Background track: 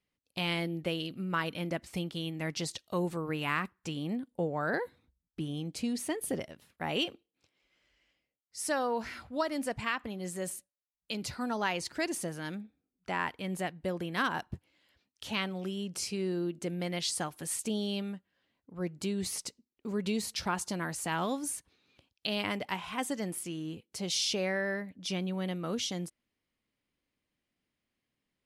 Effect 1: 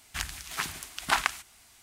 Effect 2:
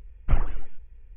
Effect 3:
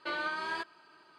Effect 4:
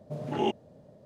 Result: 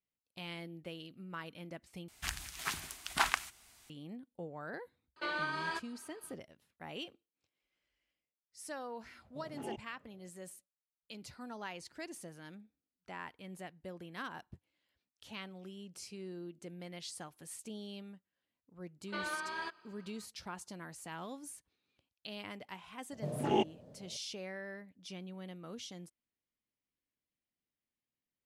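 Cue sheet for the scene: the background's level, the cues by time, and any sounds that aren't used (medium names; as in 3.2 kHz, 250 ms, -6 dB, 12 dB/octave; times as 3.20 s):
background track -12.5 dB
2.08 s: replace with 1 -5 dB
5.16 s: add 3 -2 dB
9.25 s: add 4 -15.5 dB
19.07 s: add 3 -4.5 dB + peaking EQ 7.8 kHz -6 dB 0.22 oct
23.12 s: add 4 -2 dB
not used: 2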